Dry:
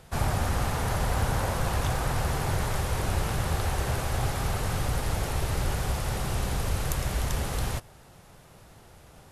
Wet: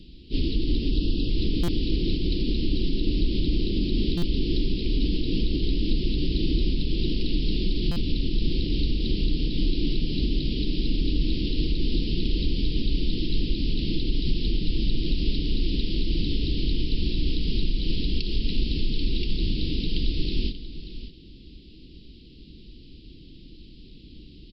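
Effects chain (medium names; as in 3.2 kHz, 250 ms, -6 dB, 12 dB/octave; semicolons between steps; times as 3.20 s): peak limiter -20.5 dBFS, peak gain reduction 8.5 dB; elliptic band-stop 930–7700 Hz, stop band 80 dB; wide varispeed 0.38×; spectral selection erased 0.91–1.30 s, 710–2500 Hz; delay 585 ms -13 dB; buffer glitch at 1.63/4.17/7.91 s, samples 256, times 8; trim +7.5 dB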